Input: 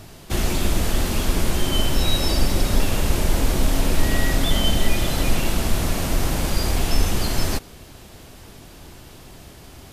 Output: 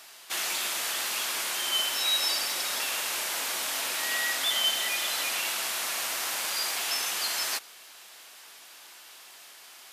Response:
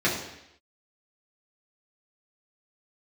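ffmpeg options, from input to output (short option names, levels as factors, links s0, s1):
-af "highpass=1200"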